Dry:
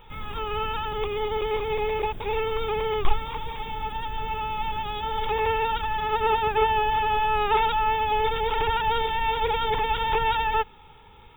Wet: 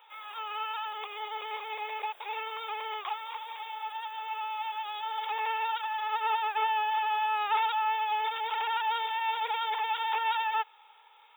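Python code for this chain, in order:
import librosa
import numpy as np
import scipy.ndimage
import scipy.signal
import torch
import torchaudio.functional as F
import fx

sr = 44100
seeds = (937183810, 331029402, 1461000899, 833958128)

y = scipy.signal.sosfilt(scipy.signal.butter(4, 660.0, 'highpass', fs=sr, output='sos'), x)
y = y * 10.0 ** (-4.5 / 20.0)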